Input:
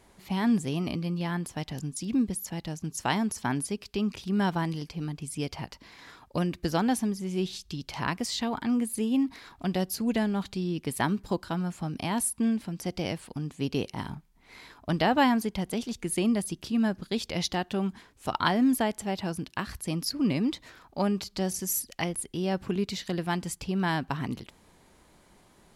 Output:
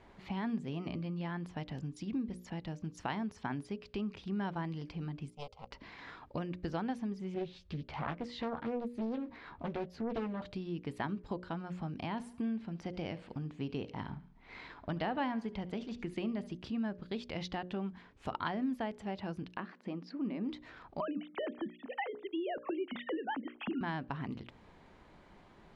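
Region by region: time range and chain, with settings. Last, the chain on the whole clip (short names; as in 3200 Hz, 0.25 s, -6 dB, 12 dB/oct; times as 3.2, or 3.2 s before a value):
5.3–5.71 power-law curve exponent 2 + fixed phaser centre 720 Hz, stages 4 + comb 3.8 ms, depth 47%
7.34–10.42 high shelf 4100 Hz -11.5 dB + doubler 13 ms -5.5 dB + Doppler distortion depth 0.82 ms
12.04–16.57 LPF 8500 Hz + feedback echo 71 ms, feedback 40%, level -19.5 dB
19.57–20.49 brick-wall FIR high-pass 170 Hz + tape spacing loss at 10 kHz 26 dB
21–23.81 sine-wave speech + three-band squash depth 70%
whole clip: LPF 2900 Hz 12 dB/oct; notches 60/120/180/240/300/360/420/480/540/600 Hz; compressor 2:1, threshold -43 dBFS; gain +1 dB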